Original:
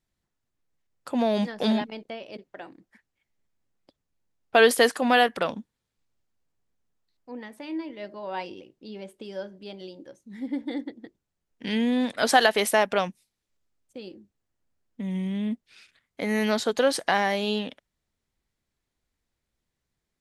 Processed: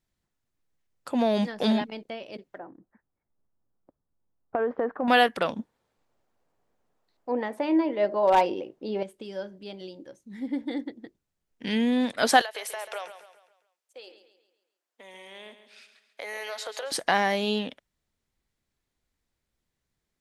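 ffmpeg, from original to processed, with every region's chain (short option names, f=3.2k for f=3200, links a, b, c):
-filter_complex "[0:a]asettb=1/sr,asplit=3[a][b][c];[a]atrim=end=2.584[d];[b]atrim=start=2.58:end=5.08,asetpts=PTS-STARTPTS,afade=t=in:d=0.004:c=qsin,afade=t=out:st=2.496:d=0.004:c=qsin,lowpass=f=1.3k:w=0.5412,lowpass=f=1.3k:w=1.3066,acompressor=threshold=-22dB:ratio=10:attack=3.2:release=140:knee=1:detection=peak[e];[c]atrim=start=5.076[f];[d][e]acrossfade=d=0.004:c1=hsin:c2=qsin[g];[g][f]acrossfade=d=0.004:c1=qsin:c2=hsin,asettb=1/sr,asplit=3[h][i][j];[h]atrim=end=5.594[k];[i]atrim=start=5.59:end=9.03,asetpts=PTS-STARTPTS,afade=t=in:d=0.004:c=qsin,afade=t=out:st=3.436:d=0.004:c=qsin,equalizer=f=670:w=0.45:g=15,aeval=exprs='0.251*(abs(mod(val(0)/0.251+3,4)-2)-1)':c=same[l];[j]atrim=start=9.026[m];[k][l]acrossfade=d=0.004:c1=hsin:c2=qsin[n];[n][m]acrossfade=d=0.004:c1=qsin:c2=hsin,asettb=1/sr,asplit=3[o][p][q];[o]atrim=end=12.414[r];[p]atrim=start=12.41:end=16.92,asetpts=PTS-STARTPTS,afade=t=in:d=0.004:c=qsin,afade=t=out:st=4.506:d=0.004:c=qsin,highpass=f=510:w=0.5412,highpass=f=510:w=1.3066,acompressor=threshold=-32dB:ratio=6:attack=3.2:release=140:knee=1:detection=peak,aecho=1:1:137|274|411|548|685:0.282|0.124|0.0546|0.024|0.0106,atrim=end_sample=198891[s];[q]atrim=start=16.916[t];[r][s]acrossfade=d=0.004:c1=hsin:c2=qsin[u];[u][t]acrossfade=d=0.004:c1=qsin:c2=hsin"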